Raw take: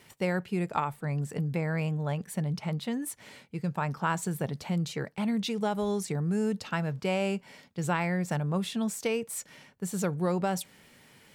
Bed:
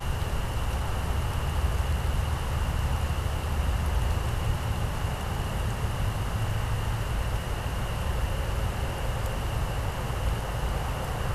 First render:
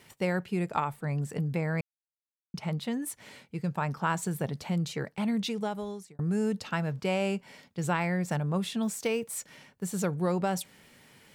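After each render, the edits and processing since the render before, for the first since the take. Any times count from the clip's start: 1.81–2.54 mute; 5.44–6.19 fade out; 8.82–9.92 block floating point 7-bit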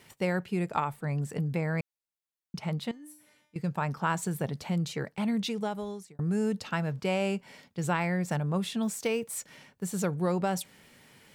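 2.91–3.56 resonator 300 Hz, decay 0.53 s, mix 90%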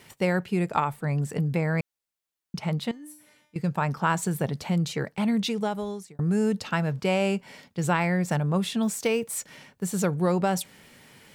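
gain +4.5 dB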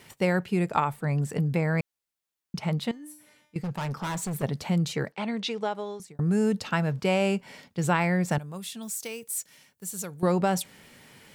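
3.63–4.43 hard clip -28.5 dBFS; 5.12–6 BPF 330–5300 Hz; 8.38–10.23 pre-emphasis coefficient 0.8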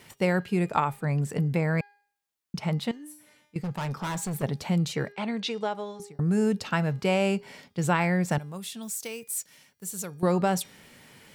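de-hum 407.7 Hz, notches 14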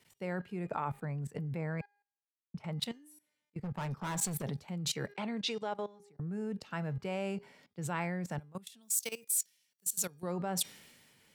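level quantiser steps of 18 dB; three-band expander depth 70%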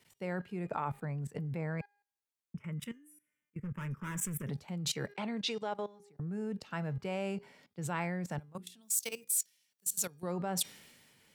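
2.56–4.5 fixed phaser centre 1800 Hz, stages 4; 8.46–10.07 notches 60/120/180/240/300/360/420/480 Hz

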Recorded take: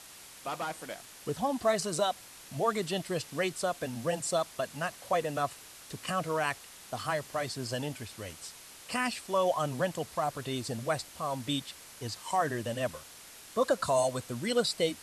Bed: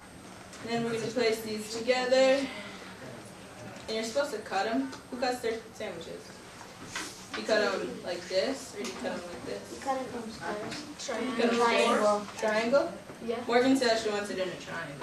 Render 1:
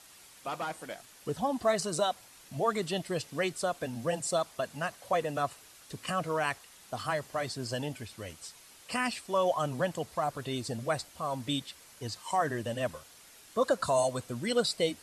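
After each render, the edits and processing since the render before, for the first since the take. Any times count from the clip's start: denoiser 6 dB, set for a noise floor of -51 dBFS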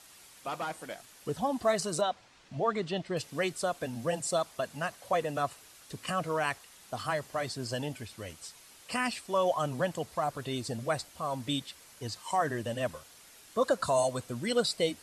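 2.01–3.17 air absorption 120 m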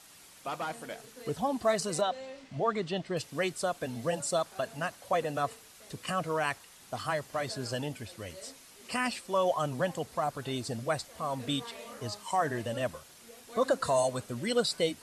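add bed -21 dB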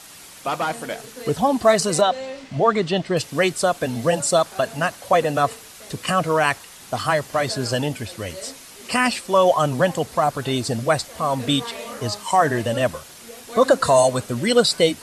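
gain +12 dB

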